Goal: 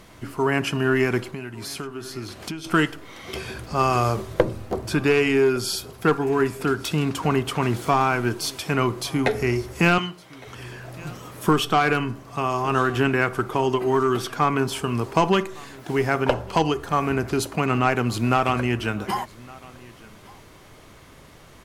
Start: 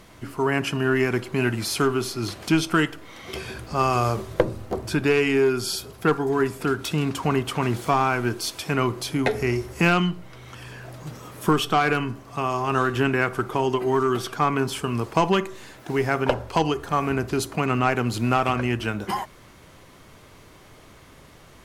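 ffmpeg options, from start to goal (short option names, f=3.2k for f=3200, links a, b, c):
-filter_complex "[0:a]asplit=3[a][b][c];[a]afade=t=out:st=1.3:d=0.02[d];[b]acompressor=threshold=-31dB:ratio=12,afade=t=in:st=1.3:d=0.02,afade=t=out:st=2.64:d=0.02[e];[c]afade=t=in:st=2.64:d=0.02[f];[d][e][f]amix=inputs=3:normalize=0,asettb=1/sr,asplit=3[g][h][i];[g]atrim=end=9.984[j];[h]atrim=start=9.98:end=10.47,asetpts=PTS-STARTPTS,afade=t=in:d=0.004:c=qsin,afade=t=out:st=0.486:d=0.004:c=qsin,highpass=f=580:p=1[k];[i]atrim=start=10.466[l];[j][k]acrossfade=d=0.004:c1=hsin:c2=qsin[m];[m][l]acrossfade=d=0.004:c1=qsin:c2=hsin,aecho=1:1:1161:0.0708,volume=1dB"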